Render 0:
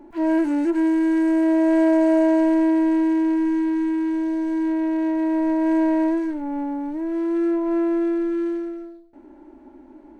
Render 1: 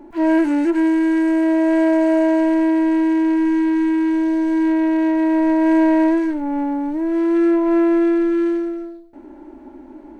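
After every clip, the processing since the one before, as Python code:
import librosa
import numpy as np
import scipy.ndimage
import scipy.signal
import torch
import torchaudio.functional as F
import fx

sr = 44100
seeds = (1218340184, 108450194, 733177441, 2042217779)

y = fx.dynamic_eq(x, sr, hz=2300.0, q=0.77, threshold_db=-38.0, ratio=4.0, max_db=4)
y = fx.rider(y, sr, range_db=3, speed_s=2.0)
y = y * librosa.db_to_amplitude(3.5)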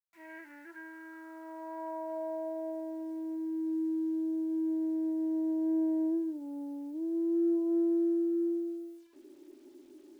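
y = fx.peak_eq(x, sr, hz=2500.0, db=-7.5, octaves=2.8)
y = fx.filter_sweep_bandpass(y, sr, from_hz=2300.0, to_hz=390.0, start_s=0.03, end_s=3.76, q=4.6)
y = fx.quant_dither(y, sr, seeds[0], bits=10, dither='none')
y = y * librosa.db_to_amplitude(-7.5)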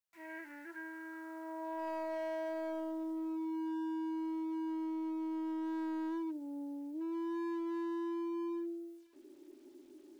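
y = fx.rider(x, sr, range_db=4, speed_s=2.0)
y = np.clip(y, -10.0 ** (-33.5 / 20.0), 10.0 ** (-33.5 / 20.0))
y = y * librosa.db_to_amplitude(-3.0)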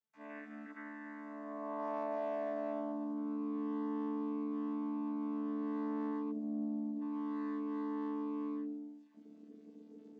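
y = fx.chord_vocoder(x, sr, chord='bare fifth', root=50)
y = y * librosa.db_to_amplitude(1.5)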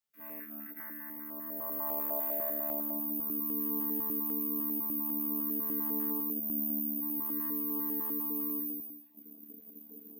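y = (np.kron(x[::3], np.eye(3)[0]) * 3)[:len(x)]
y = fx.filter_held_notch(y, sr, hz=10.0, low_hz=320.0, high_hz=1900.0)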